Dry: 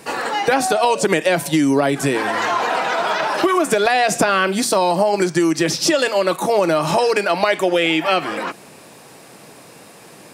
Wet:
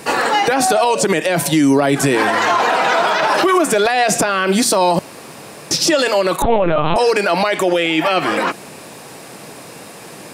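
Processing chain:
brickwall limiter −13 dBFS, peak gain reduction 10 dB
0:04.99–0:05.71: fill with room tone
0:06.42–0:06.96: linear-prediction vocoder at 8 kHz pitch kept
level +7 dB

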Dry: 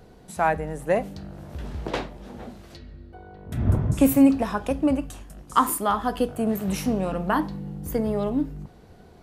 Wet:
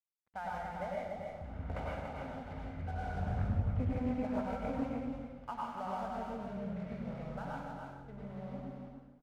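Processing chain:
source passing by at 0:02.96, 31 m/s, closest 10 metres
low-pass filter 2,200 Hz 24 dB per octave
comb filter 1.4 ms, depth 75%
downward compressor 4 to 1, threshold −38 dBFS, peak gain reduction 18.5 dB
dead-zone distortion −55.5 dBFS
on a send: single-tap delay 287 ms −5 dB
on the sum: dense smooth reverb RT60 1 s, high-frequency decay 0.95×, pre-delay 85 ms, DRR −4 dB
highs frequency-modulated by the lows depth 0.44 ms

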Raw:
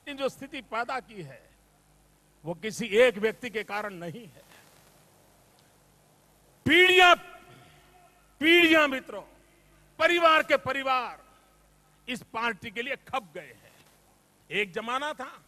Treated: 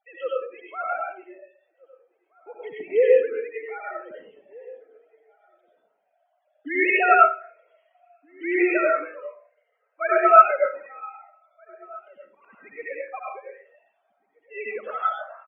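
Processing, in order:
three sine waves on the formant tracks
dynamic equaliser 1,400 Hz, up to +6 dB, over −43 dBFS, Q 6.4
spectral peaks only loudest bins 32
0:10.58–0:12.53: volume swells 532 ms
slap from a distant wall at 270 metres, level −24 dB
comb and all-pass reverb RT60 0.42 s, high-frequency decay 0.5×, pre-delay 55 ms, DRR −4 dB
level −4.5 dB

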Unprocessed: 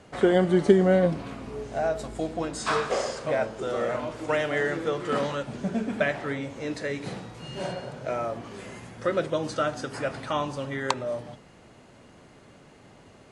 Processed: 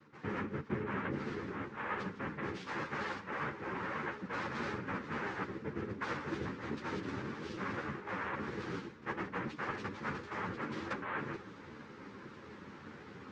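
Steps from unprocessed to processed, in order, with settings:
cochlear-implant simulation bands 3
high-frequency loss of the air 230 metres
reversed playback
downward compressor 8 to 1, threshold −40 dBFS, peak gain reduction 27.5 dB
reversed playback
parametric band 680 Hz −10.5 dB 0.29 octaves
string-ensemble chorus
level +7.5 dB

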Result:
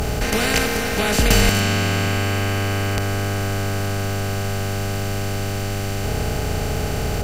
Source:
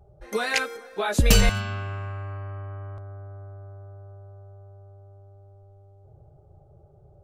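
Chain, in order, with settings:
compressor on every frequency bin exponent 0.2
level −2 dB

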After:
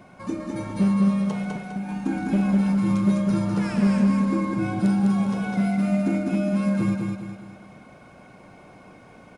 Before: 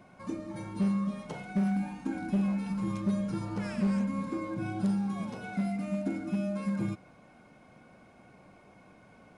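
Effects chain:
0:01.25–0:01.89: downward compressor 5 to 1, threshold −37 dBFS, peak gain reduction 11.5 dB
on a send: repeating echo 203 ms, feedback 42%, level −3.5 dB
on the sum: level +7 dB

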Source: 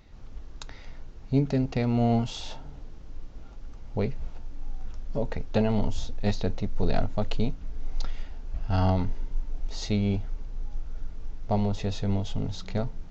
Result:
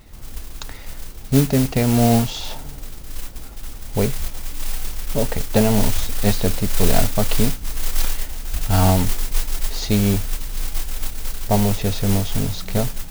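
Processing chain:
noise that follows the level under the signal 13 dB
level +8 dB

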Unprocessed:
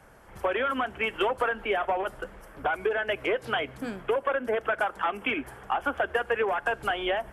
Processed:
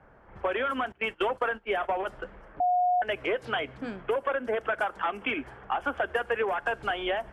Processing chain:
0:00.92–0:02.08: noise gate −31 dBFS, range −20 dB
low-pass that shuts in the quiet parts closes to 1,700 Hz, open at −22.5 dBFS
0:02.60–0:03.02: beep over 721 Hz −19.5 dBFS
level −1.5 dB

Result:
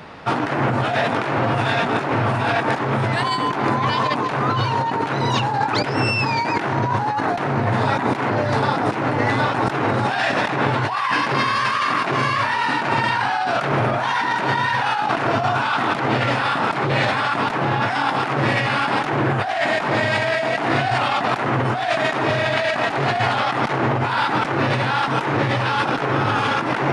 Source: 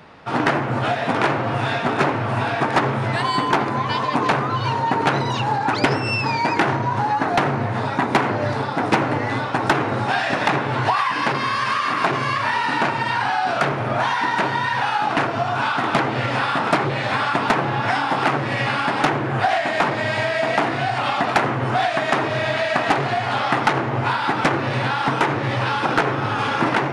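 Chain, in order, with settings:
compressor whose output falls as the input rises −24 dBFS, ratio −1
level +3.5 dB

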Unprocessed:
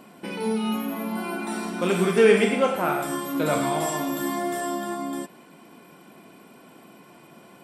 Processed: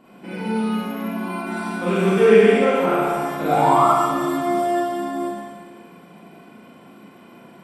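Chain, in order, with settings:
sound drawn into the spectrogram rise, 0:03.47–0:03.89, 700–1,400 Hz −20 dBFS
bass and treble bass +3 dB, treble −8 dB
four-comb reverb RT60 1.6 s, combs from 33 ms, DRR −9 dB
level −6 dB

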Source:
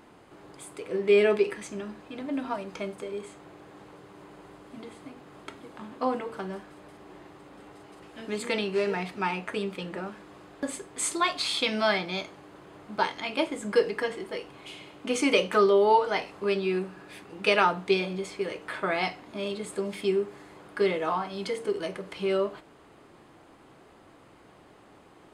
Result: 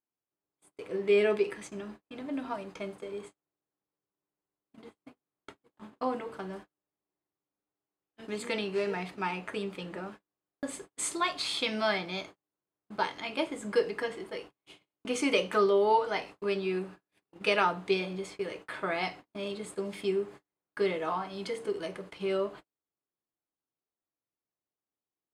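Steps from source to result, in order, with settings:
noise gate −41 dBFS, range −41 dB
level −4 dB

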